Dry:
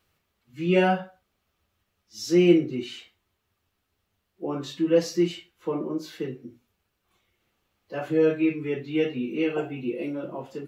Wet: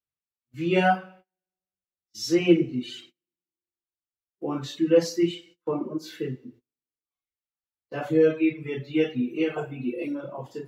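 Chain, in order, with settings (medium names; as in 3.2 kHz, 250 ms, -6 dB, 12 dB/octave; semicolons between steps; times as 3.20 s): two-slope reverb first 0.62 s, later 2.3 s, from -24 dB, DRR 2.5 dB; reverb removal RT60 1.7 s; gate -50 dBFS, range -29 dB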